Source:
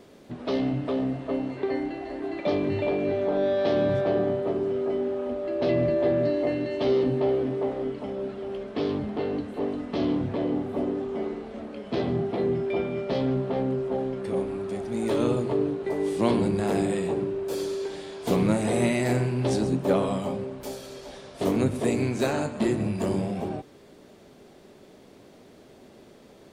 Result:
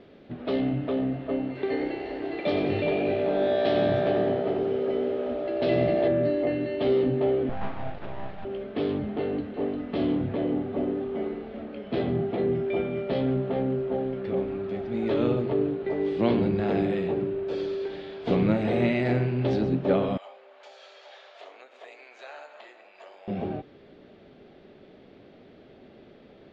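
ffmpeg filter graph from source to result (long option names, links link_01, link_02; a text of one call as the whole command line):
ffmpeg -i in.wav -filter_complex "[0:a]asettb=1/sr,asplit=3[link_01][link_02][link_03];[link_01]atrim=end=1.554[link_04];[link_02]atrim=start=1.55:end=6.08,asetpts=PTS-STARTPTS,afade=type=in:duration=0.004:curve=qsin,afade=type=out:start_time=4.526:duration=0.004:curve=qsin,aemphasis=mode=production:type=75fm,asplit=7[link_05][link_06][link_07][link_08][link_09][link_10][link_11];[link_06]adelay=92,afreqshift=62,volume=-7dB[link_12];[link_07]adelay=184,afreqshift=124,volume=-12.8dB[link_13];[link_08]adelay=276,afreqshift=186,volume=-18.7dB[link_14];[link_09]adelay=368,afreqshift=248,volume=-24.5dB[link_15];[link_10]adelay=460,afreqshift=310,volume=-30.4dB[link_16];[link_11]adelay=552,afreqshift=372,volume=-36.2dB[link_17];[link_05][link_12][link_13][link_14][link_15][link_16][link_17]amix=inputs=7:normalize=0,atrim=end_sample=199773[link_18];[link_03]atrim=start=6.076[link_19];[link_04][link_18]acrossfade=duration=0.004:curve1=hsin:curve2=qsin[link_20];[link_20][link_19]acrossfade=duration=0.004:curve1=qsin:curve2=hsin,asettb=1/sr,asplit=3[link_21][link_22][link_23];[link_21]atrim=end=7.494[link_24];[link_22]atrim=start=7.49:end=8.45,asetpts=PTS-STARTPTS,afade=type=in:duration=0.004:curve=qsin,afade=type=out:start_time=0.956:duration=0.004:curve=qsin,bandreject=frequency=740:width=12,aeval=exprs='abs(val(0))':channel_layout=same[link_25];[link_23]atrim=start=8.446[link_26];[link_24][link_25]acrossfade=duration=0.004:curve1=hsin:curve2=qsin[link_27];[link_27][link_26]acrossfade=duration=0.004:curve1=qsin:curve2=hsin,asettb=1/sr,asplit=3[link_28][link_29][link_30];[link_28]atrim=end=20.174[link_31];[link_29]atrim=start=20.17:end=23.28,asetpts=PTS-STARTPTS,afade=type=in:duration=0.004:curve=qsin,afade=type=out:start_time=3.106:duration=0.004:curve=qsin,equalizer=frequency=6900:width_type=o:width=0.3:gain=10.5,acompressor=threshold=-37dB:ratio=2.5:attack=3.2:release=140:knee=1:detection=peak,highpass=frequency=650:width=0.5412,highpass=frequency=650:width=1.3066[link_32];[link_30]atrim=start=23.276[link_33];[link_31][link_32]acrossfade=duration=0.004:curve1=hsin:curve2=qsin[link_34];[link_34][link_33]acrossfade=duration=0.004:curve1=qsin:curve2=hsin,lowpass=frequency=3700:width=0.5412,lowpass=frequency=3700:width=1.3066,equalizer=frequency=1000:width=4.1:gain=-6.5" out.wav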